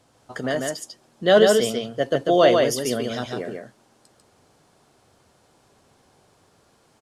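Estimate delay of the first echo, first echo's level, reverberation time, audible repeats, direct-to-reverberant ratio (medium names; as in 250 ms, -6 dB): 145 ms, -3.5 dB, no reverb, 1, no reverb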